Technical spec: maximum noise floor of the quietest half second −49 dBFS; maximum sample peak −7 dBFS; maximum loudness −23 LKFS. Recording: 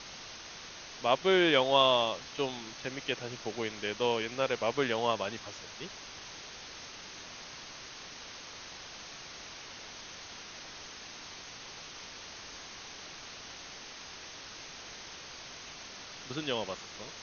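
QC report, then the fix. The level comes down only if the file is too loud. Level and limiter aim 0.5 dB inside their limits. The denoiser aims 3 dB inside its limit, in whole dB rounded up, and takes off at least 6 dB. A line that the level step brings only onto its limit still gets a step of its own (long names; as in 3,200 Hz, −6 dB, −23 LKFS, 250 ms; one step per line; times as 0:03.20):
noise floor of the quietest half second −47 dBFS: out of spec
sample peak −11.0 dBFS: in spec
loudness −35.0 LKFS: in spec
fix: broadband denoise 6 dB, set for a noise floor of −47 dBFS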